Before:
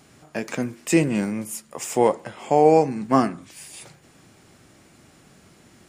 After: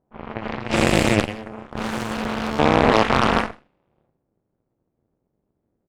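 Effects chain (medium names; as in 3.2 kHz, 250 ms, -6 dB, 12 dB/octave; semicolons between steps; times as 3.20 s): every event in the spectrogram widened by 480 ms; level-controlled noise filter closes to 570 Hz, open at -7.5 dBFS; resonant high shelf 4.8 kHz -6.5 dB, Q 1.5; hum notches 50/100/150/200 Hz; 1.30–2.59 s: hard clipper -14.5 dBFS, distortion -11 dB; AM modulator 220 Hz, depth 95%; on a send: delay 129 ms -15 dB; on the sum: Chebyshev shaper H 5 -35 dB, 7 -17 dB, 8 -15 dB, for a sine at -0.5 dBFS; trim -1.5 dB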